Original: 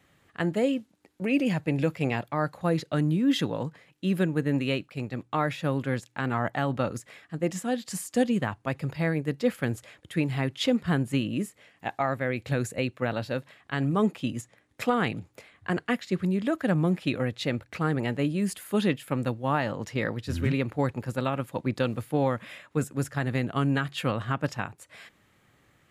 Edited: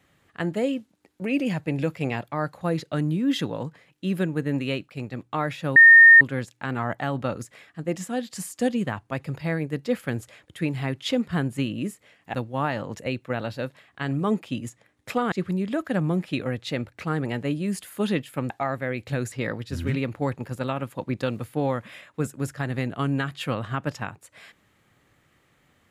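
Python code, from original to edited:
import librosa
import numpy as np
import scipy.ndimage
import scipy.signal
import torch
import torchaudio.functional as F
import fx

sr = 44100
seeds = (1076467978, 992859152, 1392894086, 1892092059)

y = fx.edit(x, sr, fx.insert_tone(at_s=5.76, length_s=0.45, hz=1830.0, db=-7.0),
    fx.swap(start_s=11.89, length_s=0.82, other_s=19.24, other_length_s=0.65),
    fx.cut(start_s=15.04, length_s=1.02), tone=tone)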